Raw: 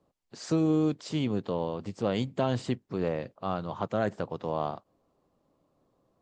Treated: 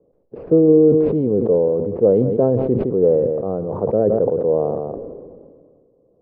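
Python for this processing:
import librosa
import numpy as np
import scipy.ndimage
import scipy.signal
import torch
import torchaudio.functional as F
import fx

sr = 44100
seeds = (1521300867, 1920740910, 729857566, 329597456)

p1 = np.repeat(x[::6], 6)[:len(x)]
p2 = fx.lowpass_res(p1, sr, hz=470.0, q=4.9)
p3 = p2 + fx.echo_single(p2, sr, ms=163, db=-18.0, dry=0)
p4 = fx.sustainer(p3, sr, db_per_s=31.0)
y = F.gain(torch.from_numpy(p4), 5.5).numpy()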